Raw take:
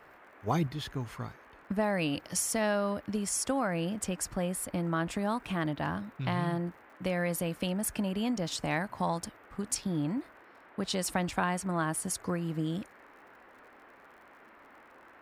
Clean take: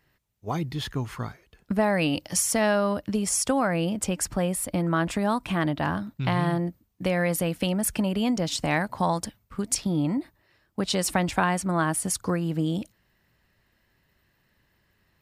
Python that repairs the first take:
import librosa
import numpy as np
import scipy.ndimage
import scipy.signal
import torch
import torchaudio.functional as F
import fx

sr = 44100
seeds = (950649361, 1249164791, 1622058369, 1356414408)

y = fx.fix_declick_ar(x, sr, threshold=6.5)
y = fx.noise_reduce(y, sr, print_start_s=13.95, print_end_s=14.45, reduce_db=12.0)
y = fx.gain(y, sr, db=fx.steps((0.0, 0.0), (0.67, 6.5)))